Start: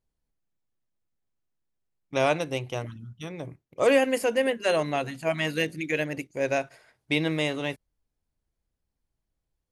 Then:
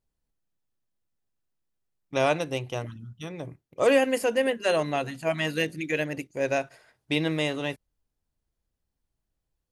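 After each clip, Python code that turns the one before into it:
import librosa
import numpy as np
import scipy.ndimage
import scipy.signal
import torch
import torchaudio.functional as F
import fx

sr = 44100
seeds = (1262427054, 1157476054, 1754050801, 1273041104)

y = fx.notch(x, sr, hz=2200.0, q=19.0)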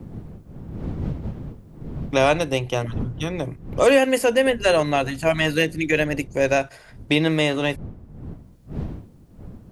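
y = fx.dmg_wind(x, sr, seeds[0], corner_hz=120.0, level_db=-43.0)
y = fx.band_squash(y, sr, depth_pct=40)
y = y * librosa.db_to_amplitude(7.0)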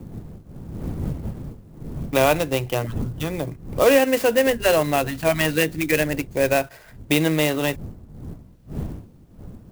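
y = fx.clock_jitter(x, sr, seeds[1], jitter_ms=0.034)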